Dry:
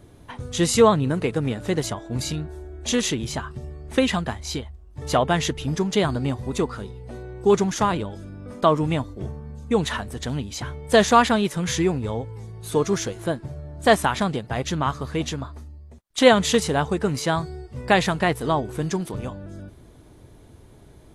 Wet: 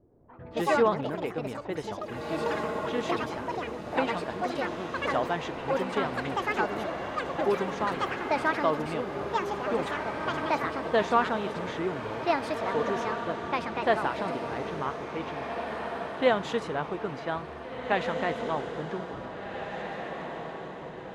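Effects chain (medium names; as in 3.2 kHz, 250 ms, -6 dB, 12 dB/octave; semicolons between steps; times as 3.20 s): treble shelf 11 kHz -12 dB; ever faster or slower copies 114 ms, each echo +5 st, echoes 3; level-controlled noise filter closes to 520 Hz, open at -17.5 dBFS; tone controls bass -9 dB, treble -14 dB; on a send: echo that smears into a reverb 1900 ms, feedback 44%, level -5.5 dB; on the sum: trim -8 dB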